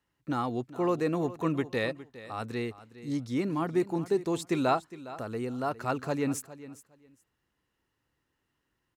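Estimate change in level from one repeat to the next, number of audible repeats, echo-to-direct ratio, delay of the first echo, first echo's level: -15.0 dB, 2, -16.0 dB, 0.41 s, -16.0 dB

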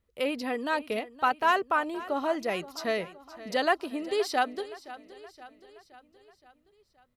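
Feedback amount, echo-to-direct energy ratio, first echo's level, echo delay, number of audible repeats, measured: 55%, -15.5 dB, -17.0 dB, 0.521 s, 4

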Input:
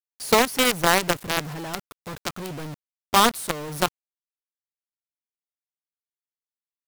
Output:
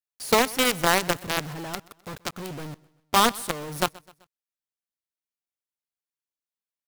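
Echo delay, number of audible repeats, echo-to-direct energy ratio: 0.128 s, 2, -22.0 dB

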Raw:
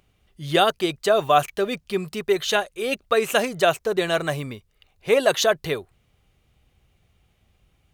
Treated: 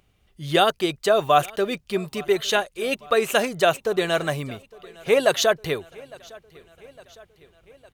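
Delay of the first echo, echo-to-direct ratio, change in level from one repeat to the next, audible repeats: 0.858 s, -22.0 dB, -4.5 dB, 3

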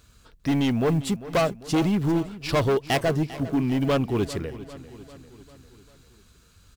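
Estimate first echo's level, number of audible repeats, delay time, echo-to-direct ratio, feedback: -16.0 dB, 4, 0.397 s, -14.5 dB, 56%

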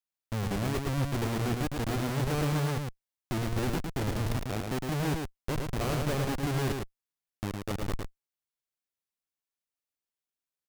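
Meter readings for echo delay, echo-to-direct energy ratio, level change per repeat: 0.109 s, -4.0 dB, no steady repeat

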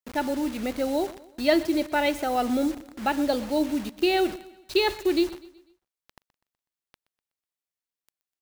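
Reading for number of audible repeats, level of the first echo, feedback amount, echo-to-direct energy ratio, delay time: 3, -18.5 dB, 45%, -17.5 dB, 0.124 s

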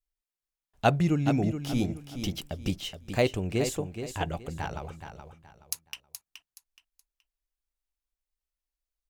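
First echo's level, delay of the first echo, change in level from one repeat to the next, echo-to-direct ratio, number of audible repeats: -9.0 dB, 0.423 s, -11.0 dB, -8.5 dB, 3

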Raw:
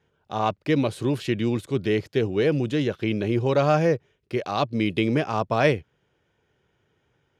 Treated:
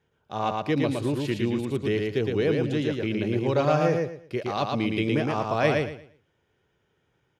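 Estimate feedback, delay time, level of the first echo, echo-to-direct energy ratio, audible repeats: 25%, 0.114 s, -3.0 dB, -2.5 dB, 3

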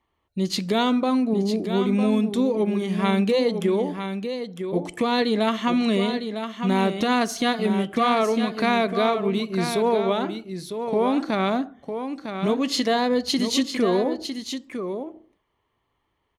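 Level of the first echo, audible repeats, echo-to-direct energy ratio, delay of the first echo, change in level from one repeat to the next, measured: -8.0 dB, 1, -8.0 dB, 0.954 s, no steady repeat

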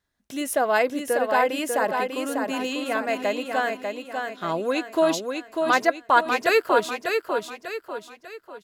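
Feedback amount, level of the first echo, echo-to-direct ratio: 41%, -5.0 dB, -4.0 dB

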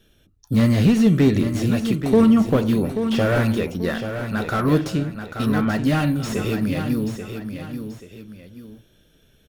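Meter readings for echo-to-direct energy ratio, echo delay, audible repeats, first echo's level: -8.0 dB, 0.834 s, 2, -8.5 dB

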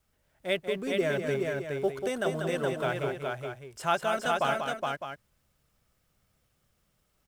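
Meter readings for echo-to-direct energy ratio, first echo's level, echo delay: -1.0 dB, -6.5 dB, 0.19 s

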